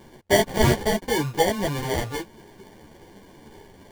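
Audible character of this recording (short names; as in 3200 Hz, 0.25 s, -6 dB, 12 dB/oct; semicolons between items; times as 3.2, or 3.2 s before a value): aliases and images of a low sample rate 1300 Hz, jitter 0%; a shimmering, thickened sound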